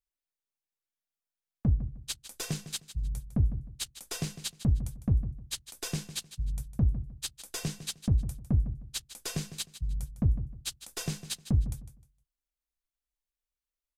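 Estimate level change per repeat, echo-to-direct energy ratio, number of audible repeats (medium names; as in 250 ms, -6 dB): -12.5 dB, -12.5 dB, 2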